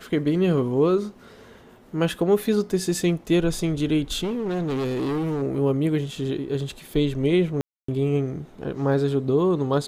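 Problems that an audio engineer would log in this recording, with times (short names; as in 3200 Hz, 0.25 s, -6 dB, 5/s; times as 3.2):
4.23–5.43 clipped -23 dBFS
7.61–7.88 gap 0.274 s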